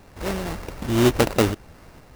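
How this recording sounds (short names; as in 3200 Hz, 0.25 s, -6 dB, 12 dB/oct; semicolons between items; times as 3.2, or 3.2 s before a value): a buzz of ramps at a fixed pitch in blocks of 16 samples; tremolo saw up 1.5 Hz, depth 30%; aliases and images of a low sample rate 3300 Hz, jitter 20%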